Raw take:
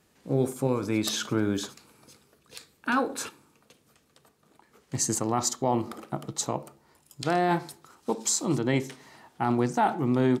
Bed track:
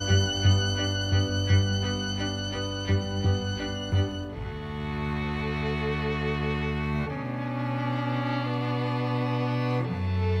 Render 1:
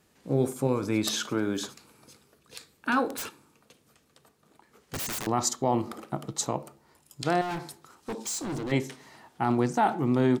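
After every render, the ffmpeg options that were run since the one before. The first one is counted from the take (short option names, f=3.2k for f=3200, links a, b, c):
-filter_complex "[0:a]asettb=1/sr,asplit=3[a][b][c];[a]atrim=end=1.214[d];[b]atrim=start=1.21:end=1.61,asetpts=PTS-STARTPTS,afade=t=in:d=0.004:c=qsin,afade=t=out:st=0.396:d=0.004:c=qsin,highpass=f=220:p=1[e];[c]atrim=start=1.606[f];[d][e]acrossfade=d=0.004:c1=hsin:c2=qsin[g];[g][f]acrossfade=d=0.004:c1=qsin:c2=hsin,asettb=1/sr,asplit=3[h][i][j];[h]atrim=end=3.094[k];[i]atrim=start=3.09:end=5.27,asetpts=PTS-STARTPTS,afade=t=in:d=0.004:c=qsin,afade=t=out:st=2.176:d=0.004:c=qsin,aeval=exprs='(mod(23.7*val(0)+1,2)-1)/23.7':c=same[l];[j]atrim=start=5.266[m];[k][l]acrossfade=d=0.004:c1=hsin:c2=qsin[n];[n][m]acrossfade=d=0.004:c1=qsin:c2=hsin,asettb=1/sr,asplit=3[o][p][q];[o]atrim=end=7.414[r];[p]atrim=start=7.41:end=8.72,asetpts=PTS-STARTPTS,afade=t=in:d=0.004:c=qsin,afade=t=out:st=1.306:d=0.004:c=qsin,asoftclip=type=hard:threshold=-30.5dB[s];[q]atrim=start=8.716[t];[r][s]acrossfade=d=0.004:c1=hsin:c2=qsin[u];[u][t]acrossfade=d=0.004:c1=qsin:c2=hsin"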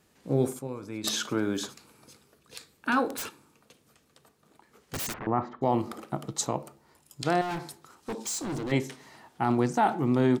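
-filter_complex "[0:a]asplit=3[a][b][c];[a]afade=t=out:st=5.12:d=0.02[d];[b]lowpass=f=2k:w=0.5412,lowpass=f=2k:w=1.3066,afade=t=in:st=5.12:d=0.02,afade=t=out:st=5.61:d=0.02[e];[c]afade=t=in:st=5.61:d=0.02[f];[d][e][f]amix=inputs=3:normalize=0,asplit=3[g][h][i];[g]atrim=end=0.592[j];[h]atrim=start=0.588:end=1.042,asetpts=PTS-STARTPTS,volume=-10.5dB[k];[i]atrim=start=1.038[l];[j][k]acrossfade=d=0.004:c1=hsin:c2=hsin[m];[m][l]acrossfade=d=0.004:c1=hsin:c2=hsin"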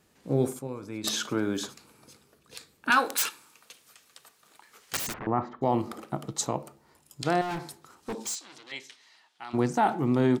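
-filter_complex "[0:a]asettb=1/sr,asplit=3[a][b][c];[a]atrim=end=2.904[d];[b]atrim=start=2.9:end=4.99,asetpts=PTS-STARTPTS,afade=t=in:d=0.004:c=qsin,afade=t=out:st=2.086:d=0.004:c=qsin,tiltshelf=f=650:g=-10[e];[c]atrim=start=4.986[f];[d][e]acrossfade=d=0.004:c1=hsin:c2=qsin[g];[g][f]acrossfade=d=0.004:c1=qsin:c2=hsin,asplit=3[h][i][j];[h]afade=t=out:st=8.34:d=0.02[k];[i]bandpass=f=3.7k:t=q:w=1.2,afade=t=in:st=8.34:d=0.02,afade=t=out:st=9.53:d=0.02[l];[j]afade=t=in:st=9.53:d=0.02[m];[k][l][m]amix=inputs=3:normalize=0"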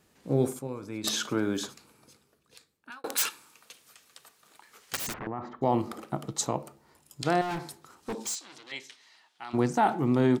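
-filter_complex "[0:a]asettb=1/sr,asplit=3[a][b][c];[a]atrim=end=4.954[d];[b]atrim=start=4.95:end=5.45,asetpts=PTS-STARTPTS,afade=t=in:d=0.004:c=qsin,afade=t=out:st=0.496:d=0.004:c=qsin,acompressor=threshold=-30dB:ratio=5:attack=3.2:release=140:knee=1:detection=peak[e];[c]atrim=start=5.446[f];[d][e]acrossfade=d=0.004:c1=hsin:c2=qsin[g];[g][f]acrossfade=d=0.004:c1=qsin:c2=hsin,asplit=2[h][i];[h]atrim=end=3.04,asetpts=PTS-STARTPTS,afade=t=out:st=1.55:d=1.49[j];[i]atrim=start=3.04,asetpts=PTS-STARTPTS,afade=t=in:d=0.004:c=hsin[k];[j][k]concat=n=2:v=0:a=1"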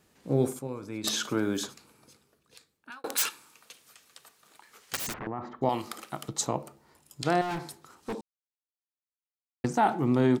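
-filter_complex "[0:a]asettb=1/sr,asplit=3[a][b][c];[a]atrim=end=1.244[d];[b]atrim=start=1.24:end=1.64,asetpts=PTS-STARTPTS,afade=t=in:d=0.004:c=qsin,afade=t=out:st=0.396:d=0.004:c=qsin,highshelf=f=9.1k:g=6.5[e];[c]atrim=start=1.636[f];[d][e]acrossfade=d=0.004:c1=hsin:c2=qsin[g];[g][f]acrossfade=d=0.004:c1=qsin:c2=hsin,asettb=1/sr,asplit=3[h][i][j];[h]atrim=end=5.694[k];[i]atrim=start=5.69:end=6.29,asetpts=PTS-STARTPTS,afade=t=in:d=0.004:c=qsin,afade=t=out:st=0.596:d=0.004:c=qsin,tiltshelf=f=1.1k:g=-9[l];[j]atrim=start=6.286[m];[k][l]acrossfade=d=0.004:c1=hsin:c2=qsin[n];[n][m]acrossfade=d=0.004:c1=qsin:c2=hsin,asplit=3[o][p][q];[o]atrim=end=8.21,asetpts=PTS-STARTPTS,afade=t=out:st=8.206:d=0.004:c=hsin[r];[p]atrim=start=8.21:end=9.64,asetpts=PTS-STARTPTS,volume=0[s];[q]atrim=start=9.64,asetpts=PTS-STARTPTS,afade=t=in:d=0.004:c=hsin[t];[r][s][t]concat=n=3:v=0:a=1"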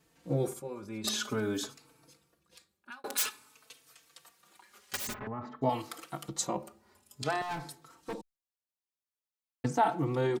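-filter_complex "[0:a]asplit=2[a][b];[b]adelay=4,afreqshift=0.51[c];[a][c]amix=inputs=2:normalize=1"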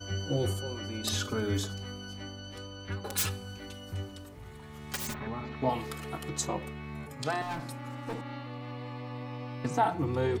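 -filter_complex "[1:a]volume=-12.5dB[a];[0:a][a]amix=inputs=2:normalize=0"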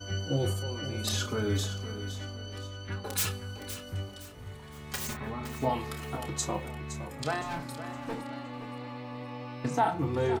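-filter_complex "[0:a]asplit=2[a][b];[b]adelay=29,volume=-9dB[c];[a][c]amix=inputs=2:normalize=0,asplit=2[d][e];[e]aecho=0:1:515|1030|1545|2060:0.251|0.0879|0.0308|0.0108[f];[d][f]amix=inputs=2:normalize=0"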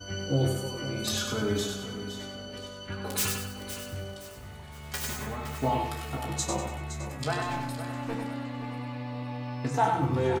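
-filter_complex "[0:a]asplit=2[a][b];[b]adelay=15,volume=-6.5dB[c];[a][c]amix=inputs=2:normalize=0,aecho=1:1:97|194|291|388|485:0.562|0.214|0.0812|0.0309|0.0117"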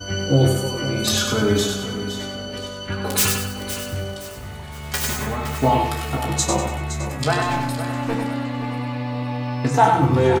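-af "volume=10dB"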